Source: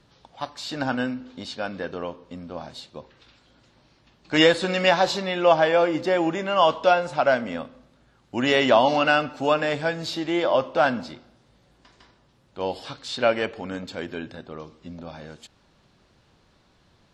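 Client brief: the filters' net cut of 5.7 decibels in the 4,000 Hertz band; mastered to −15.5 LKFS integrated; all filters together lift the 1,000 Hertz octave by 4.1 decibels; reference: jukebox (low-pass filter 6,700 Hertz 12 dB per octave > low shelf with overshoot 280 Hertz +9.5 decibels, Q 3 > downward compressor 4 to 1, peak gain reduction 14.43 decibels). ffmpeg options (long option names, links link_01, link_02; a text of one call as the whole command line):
ffmpeg -i in.wav -af "lowpass=6700,lowshelf=frequency=280:width_type=q:width=3:gain=9.5,equalizer=frequency=1000:width_type=o:gain=7.5,equalizer=frequency=4000:width_type=o:gain=-9,acompressor=threshold=-26dB:ratio=4,volume=14dB" out.wav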